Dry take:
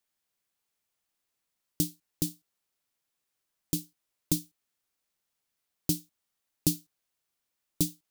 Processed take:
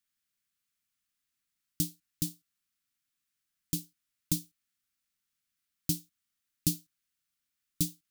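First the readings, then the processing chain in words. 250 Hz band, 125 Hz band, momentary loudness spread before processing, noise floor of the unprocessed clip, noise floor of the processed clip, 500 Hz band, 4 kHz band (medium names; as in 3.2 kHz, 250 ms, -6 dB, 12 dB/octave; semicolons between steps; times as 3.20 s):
-3.5 dB, -1.5 dB, 4 LU, -83 dBFS, -85 dBFS, -10.0 dB, -1.5 dB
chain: high-order bell 590 Hz -14.5 dB; trim -1.5 dB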